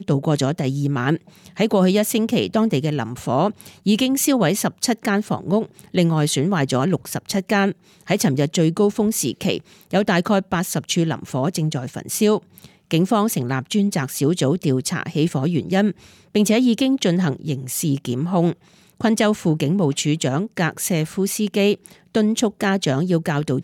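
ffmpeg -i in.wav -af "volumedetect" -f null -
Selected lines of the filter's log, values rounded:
mean_volume: -20.1 dB
max_volume: -6.4 dB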